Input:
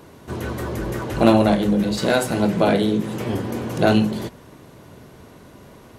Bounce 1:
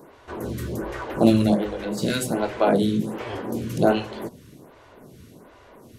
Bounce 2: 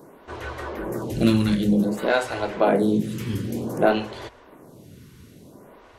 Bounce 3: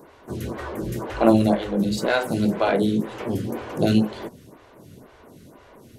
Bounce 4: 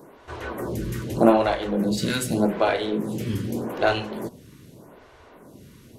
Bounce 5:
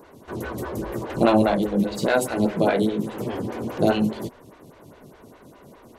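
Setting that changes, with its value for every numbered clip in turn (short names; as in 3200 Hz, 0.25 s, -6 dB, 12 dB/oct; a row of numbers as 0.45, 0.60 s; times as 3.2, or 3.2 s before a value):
photocell phaser, rate: 1.3, 0.54, 2, 0.83, 4.9 Hz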